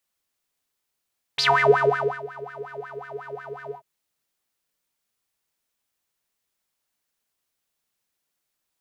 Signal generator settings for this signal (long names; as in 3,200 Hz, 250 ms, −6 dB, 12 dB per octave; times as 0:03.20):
subtractive patch with filter wobble C#3, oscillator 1 square, oscillator 2 level −14.5 dB, filter bandpass, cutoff 370 Hz, Q 12, filter envelope 3 octaves, filter decay 0.26 s, attack 9 ms, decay 0.83 s, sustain −23 dB, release 0.10 s, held 2.34 s, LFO 5.5 Hz, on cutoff 1 octave